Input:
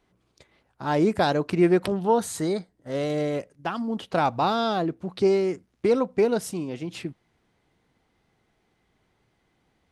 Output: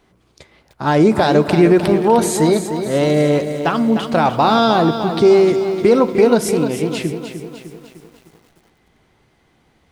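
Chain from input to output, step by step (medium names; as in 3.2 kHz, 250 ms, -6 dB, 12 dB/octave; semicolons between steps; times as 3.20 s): reverberation RT60 1.2 s, pre-delay 13 ms, DRR 12.5 dB; loudness maximiser +14 dB; bit-crushed delay 303 ms, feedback 55%, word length 7-bit, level -9 dB; trim -3 dB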